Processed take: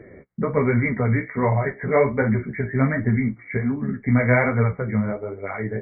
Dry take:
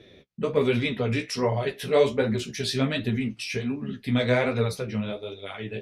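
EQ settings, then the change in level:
dynamic equaliser 430 Hz, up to −8 dB, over −36 dBFS, Q 0.92
linear-phase brick-wall low-pass 2,300 Hz
+8.5 dB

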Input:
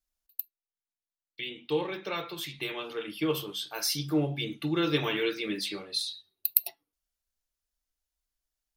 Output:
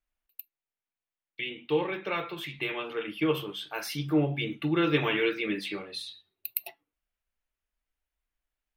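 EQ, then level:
high shelf with overshoot 3,500 Hz −10 dB, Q 1.5
+2.0 dB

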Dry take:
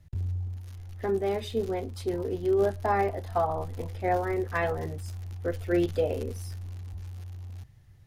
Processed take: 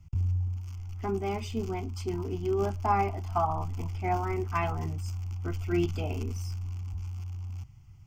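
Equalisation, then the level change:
phaser with its sweep stopped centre 2,600 Hz, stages 8
+3.5 dB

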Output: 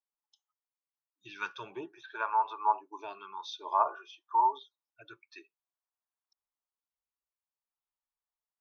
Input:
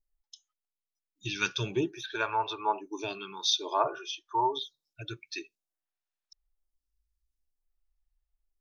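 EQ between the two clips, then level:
resonant band-pass 1,000 Hz, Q 2.6
+3.5 dB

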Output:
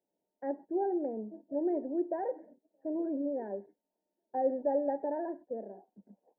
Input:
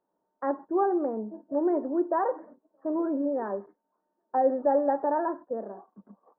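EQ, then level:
Butterworth band-reject 1,200 Hz, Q 1.1
−5.5 dB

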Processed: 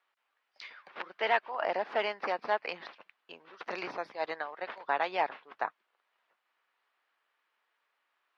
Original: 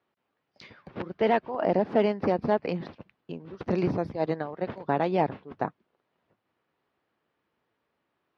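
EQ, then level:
high-pass filter 1,200 Hz 12 dB per octave
low-pass filter 3,800 Hz 6 dB per octave
+5.5 dB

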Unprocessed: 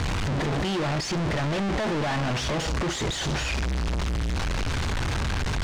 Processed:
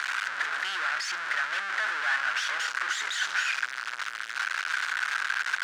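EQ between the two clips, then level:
high-pass with resonance 1,500 Hz, resonance Q 5
−3.0 dB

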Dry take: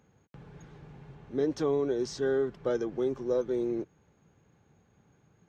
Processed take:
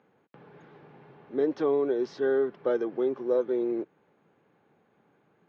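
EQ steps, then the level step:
high-pass filter 290 Hz 12 dB per octave
high-frequency loss of the air 290 metres
+4.5 dB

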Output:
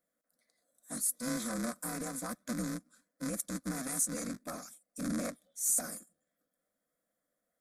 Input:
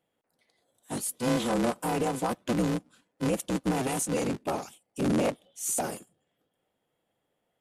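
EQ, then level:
high-shelf EQ 2,700 Hz +8 dB
phaser with its sweep stopped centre 580 Hz, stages 8
dynamic equaliser 540 Hz, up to −7 dB, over −43 dBFS, Q 1.1
−5.5 dB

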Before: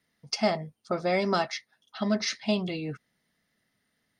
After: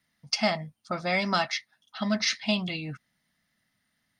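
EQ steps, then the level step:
parametric band 420 Hz −13 dB 0.66 octaves
dynamic equaliser 2,800 Hz, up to +5 dB, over −43 dBFS, Q 0.75
+1.0 dB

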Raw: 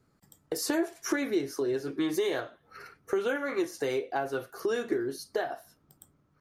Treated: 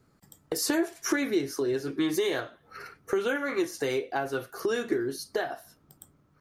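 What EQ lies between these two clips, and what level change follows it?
dynamic equaliser 620 Hz, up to −4 dB, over −42 dBFS, Q 0.72
+4.0 dB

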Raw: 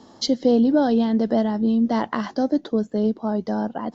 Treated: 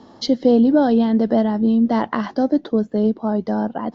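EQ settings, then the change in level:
high-frequency loss of the air 130 metres
+3.5 dB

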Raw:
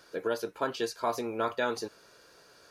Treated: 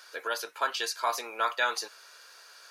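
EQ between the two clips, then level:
high-pass filter 1,100 Hz 12 dB per octave
+7.5 dB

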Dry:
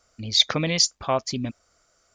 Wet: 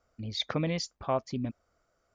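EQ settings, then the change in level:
low-pass filter 1,100 Hz 6 dB per octave
−4.0 dB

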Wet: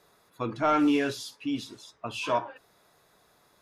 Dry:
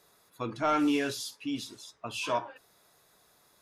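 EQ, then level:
high-shelf EQ 4,300 Hz −8.5 dB
+3.5 dB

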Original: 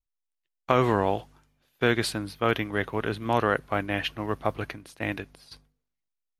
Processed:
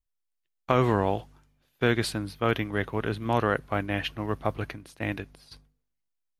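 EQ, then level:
low-shelf EQ 210 Hz +5.5 dB
−2.0 dB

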